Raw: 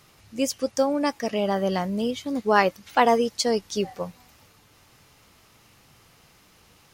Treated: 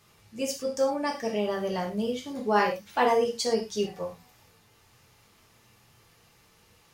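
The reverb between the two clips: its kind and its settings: gated-style reverb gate 140 ms falling, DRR -1 dB; trim -7.5 dB

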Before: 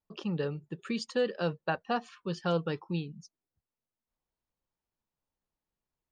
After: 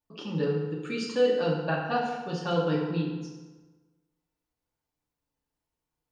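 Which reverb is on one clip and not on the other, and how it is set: FDN reverb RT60 1.3 s, low-frequency decay 0.95×, high-frequency decay 0.7×, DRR -3.5 dB; trim -1.5 dB

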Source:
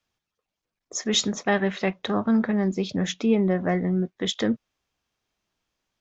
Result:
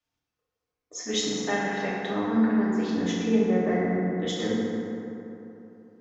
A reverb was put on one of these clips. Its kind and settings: FDN reverb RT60 3.2 s, high-frequency decay 0.4×, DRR -7.5 dB; trim -9.5 dB

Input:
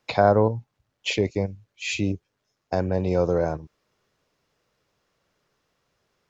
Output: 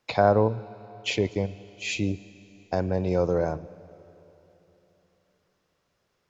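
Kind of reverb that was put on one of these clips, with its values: algorithmic reverb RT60 3.5 s, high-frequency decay 0.95×, pre-delay 40 ms, DRR 18.5 dB; trim -2 dB

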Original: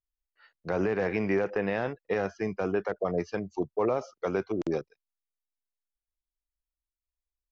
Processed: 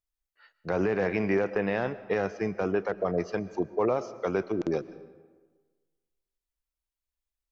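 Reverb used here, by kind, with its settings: algorithmic reverb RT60 1.4 s, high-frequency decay 0.65×, pre-delay 85 ms, DRR 16 dB; trim +1 dB

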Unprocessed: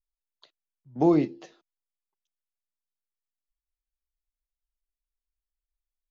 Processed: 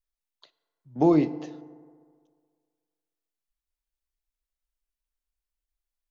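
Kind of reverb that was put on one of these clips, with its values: FDN reverb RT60 1.9 s, low-frequency decay 0.85×, high-frequency decay 0.4×, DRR 14.5 dB; trim +1 dB

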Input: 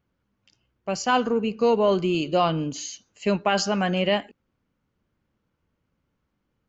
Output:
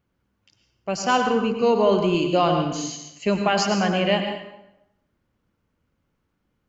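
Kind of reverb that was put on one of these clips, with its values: plate-style reverb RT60 0.87 s, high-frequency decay 0.8×, pre-delay 85 ms, DRR 4.5 dB; trim +1 dB

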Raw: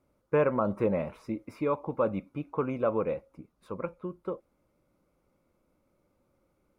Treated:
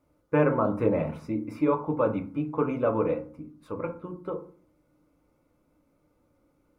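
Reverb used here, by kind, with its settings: FDN reverb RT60 0.43 s, low-frequency decay 1.55×, high-frequency decay 0.45×, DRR 3.5 dB; trim +1 dB

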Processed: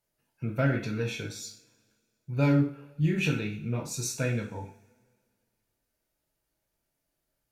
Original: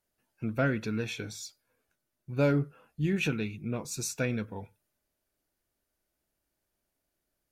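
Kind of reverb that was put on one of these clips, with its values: two-slope reverb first 0.42 s, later 2 s, from -25 dB, DRR -0.5 dB; trim -2 dB

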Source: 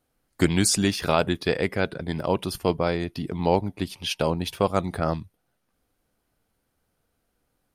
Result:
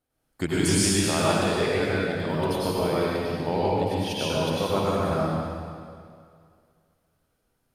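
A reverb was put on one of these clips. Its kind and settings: plate-style reverb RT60 2.2 s, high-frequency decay 0.9×, pre-delay 85 ms, DRR -8 dB; trim -8 dB

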